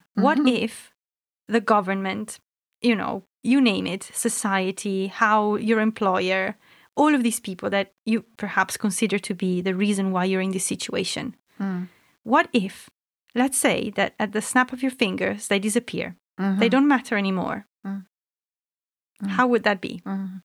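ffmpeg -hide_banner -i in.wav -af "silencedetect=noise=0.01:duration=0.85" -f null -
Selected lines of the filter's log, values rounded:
silence_start: 18.02
silence_end: 19.19 | silence_duration: 1.17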